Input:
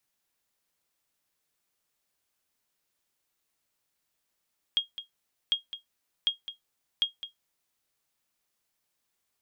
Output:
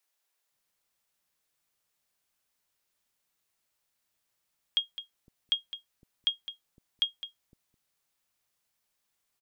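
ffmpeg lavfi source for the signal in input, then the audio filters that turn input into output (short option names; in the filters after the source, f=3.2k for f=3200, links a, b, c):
-f lavfi -i "aevalsrc='0.15*(sin(2*PI*3260*mod(t,0.75))*exp(-6.91*mod(t,0.75)/0.14)+0.224*sin(2*PI*3260*max(mod(t,0.75)-0.21,0))*exp(-6.91*max(mod(t,0.75)-0.21,0)/0.14))':d=3:s=44100"
-filter_complex "[0:a]acrossover=split=330[a][b];[a]adelay=510[c];[c][b]amix=inputs=2:normalize=0"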